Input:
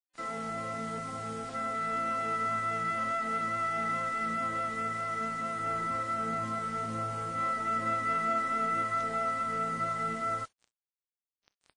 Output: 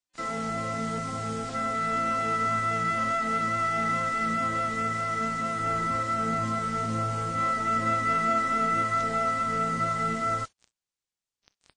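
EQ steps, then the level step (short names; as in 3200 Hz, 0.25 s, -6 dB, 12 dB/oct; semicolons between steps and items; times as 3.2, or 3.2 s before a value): LPF 8200 Hz 24 dB/oct; low shelf 250 Hz +6.5 dB; high shelf 3900 Hz +7 dB; +3.5 dB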